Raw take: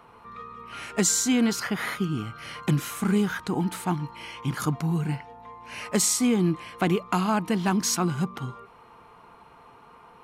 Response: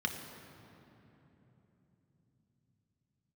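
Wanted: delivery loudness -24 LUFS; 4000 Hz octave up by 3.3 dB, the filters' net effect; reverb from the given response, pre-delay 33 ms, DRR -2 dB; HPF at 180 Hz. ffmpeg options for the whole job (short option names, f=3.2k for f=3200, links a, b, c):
-filter_complex "[0:a]highpass=180,equalizer=f=4k:t=o:g=4.5,asplit=2[a][b];[1:a]atrim=start_sample=2205,adelay=33[c];[b][c]afir=irnorm=-1:irlink=0,volume=-3dB[d];[a][d]amix=inputs=2:normalize=0,volume=-2dB"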